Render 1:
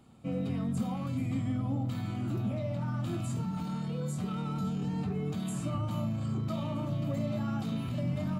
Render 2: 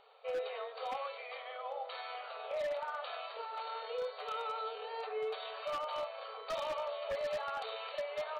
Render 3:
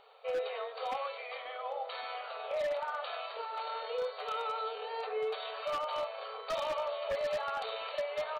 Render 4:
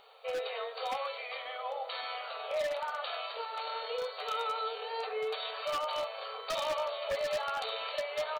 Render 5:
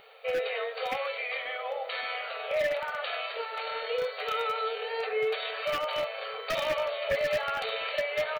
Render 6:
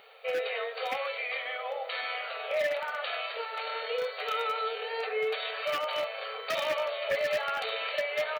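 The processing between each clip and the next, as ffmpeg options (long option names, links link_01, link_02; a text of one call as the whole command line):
ffmpeg -i in.wav -af "afftfilt=real='re*between(b*sr/4096,410,4600)':imag='im*between(b*sr/4096,410,4600)':win_size=4096:overlap=0.75,aeval=exprs='0.0168*(abs(mod(val(0)/0.0168+3,4)-2)-1)':channel_layout=same,volume=4.5dB" out.wav
ffmpeg -i in.wav -filter_complex "[0:a]asplit=2[link_01][link_02];[link_02]adelay=1108,volume=-18dB,highshelf=frequency=4000:gain=-24.9[link_03];[link_01][link_03]amix=inputs=2:normalize=0,volume=3dB" out.wav
ffmpeg -i in.wav -filter_complex "[0:a]highshelf=frequency=3500:gain=9.5,asplit=2[link_01][link_02];[link_02]adelay=13,volume=-13dB[link_03];[link_01][link_03]amix=inputs=2:normalize=0" out.wav
ffmpeg -i in.wav -af "equalizer=frequency=125:width_type=o:width=1:gain=5,equalizer=frequency=1000:width_type=o:width=1:gain=-10,equalizer=frequency=2000:width_type=o:width=1:gain=6,equalizer=frequency=4000:width_type=o:width=1:gain=-6,equalizer=frequency=8000:width_type=o:width=1:gain=-9,volume=7.5dB" out.wav
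ffmpeg -i in.wav -af "highpass=frequency=330:poles=1" out.wav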